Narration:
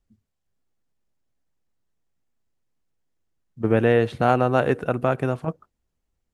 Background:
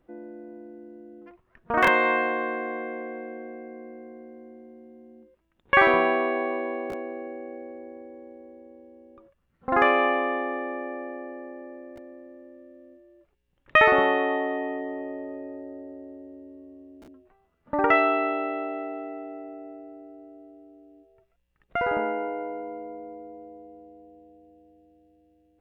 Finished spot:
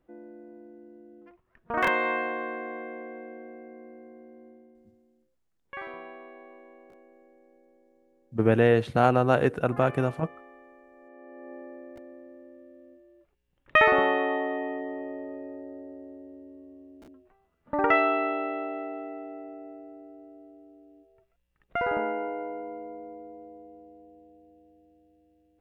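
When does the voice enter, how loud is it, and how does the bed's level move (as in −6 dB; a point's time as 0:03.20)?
4.75 s, −2.0 dB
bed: 0:04.48 −5 dB
0:05.39 −21.5 dB
0:10.90 −21.5 dB
0:11.53 −2 dB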